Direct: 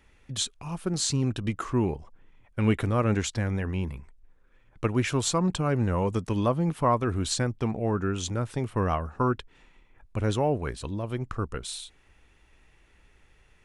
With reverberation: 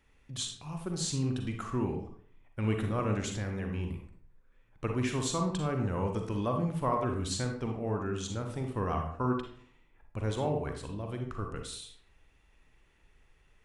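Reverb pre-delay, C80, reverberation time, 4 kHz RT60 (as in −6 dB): 38 ms, 9.5 dB, 0.55 s, 0.40 s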